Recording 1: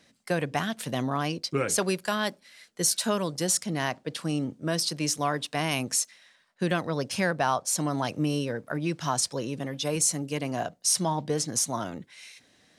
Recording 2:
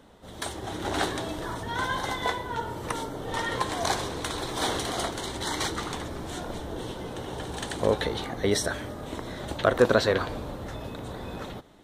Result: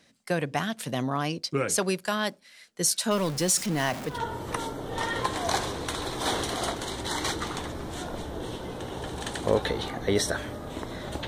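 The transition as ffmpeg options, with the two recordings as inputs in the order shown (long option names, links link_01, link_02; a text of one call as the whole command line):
ffmpeg -i cue0.wav -i cue1.wav -filter_complex "[0:a]asettb=1/sr,asplit=3[link_01][link_02][link_03];[link_01]atrim=end=3.114[link_04];[link_02]atrim=start=3.11:end=4.19,asetpts=PTS-STARTPTS,afade=type=in:duration=0.004:curve=qsin,afade=type=out:start_time=1.076:duration=0.004:curve=qsin,aeval=exprs='val(0)+0.5*0.0282*sgn(val(0))':channel_layout=same[link_05];[link_03]atrim=start=4.186[link_06];[link_04][link_05]acrossfade=duration=0.004:curve1=hsin:curve2=qsin[link_07];[link_07][link_06]acrossfade=duration=0.004:curve1=qsin:curve2=hsin,apad=whole_dur=11.27,atrim=end=11.27,atrim=end=4.19,asetpts=PTS-STARTPTS[link_08];[1:a]atrim=start=2.41:end=9.63,asetpts=PTS-STARTPTS[link_09];[link_08][link_09]acrossfade=duration=0.14:curve1=tri:curve2=tri" out.wav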